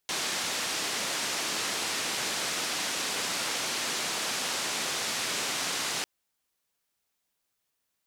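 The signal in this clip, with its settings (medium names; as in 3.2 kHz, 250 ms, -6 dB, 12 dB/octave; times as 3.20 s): noise band 180–6700 Hz, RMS -31.5 dBFS 5.95 s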